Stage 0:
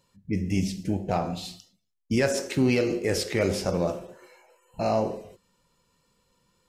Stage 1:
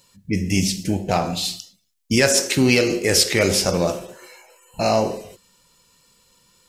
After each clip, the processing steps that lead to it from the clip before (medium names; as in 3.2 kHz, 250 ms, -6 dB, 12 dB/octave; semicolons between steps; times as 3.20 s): treble shelf 2.2 kHz +11.5 dB; trim +5 dB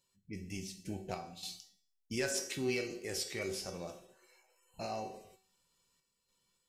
random-step tremolo 3.5 Hz; feedback comb 380 Hz, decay 0.44 s, harmonics all, mix 80%; trim -6 dB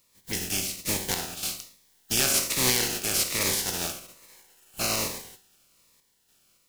spectral contrast reduction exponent 0.28; in parallel at 0 dB: peak limiter -27 dBFS, peak gain reduction 11.5 dB; on the sum: Shepard-style phaser falling 1.2 Hz; trim +8 dB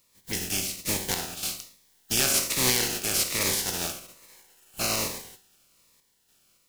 no audible change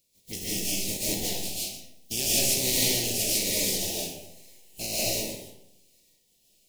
Butterworth band-stop 1.3 kHz, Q 0.71; algorithmic reverb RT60 0.81 s, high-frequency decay 0.55×, pre-delay 105 ms, DRR -7 dB; trim -5.5 dB